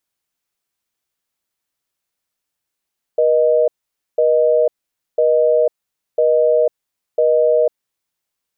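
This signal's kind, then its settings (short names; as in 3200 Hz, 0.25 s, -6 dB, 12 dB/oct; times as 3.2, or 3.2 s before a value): call progress tone busy tone, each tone -13.5 dBFS 4.67 s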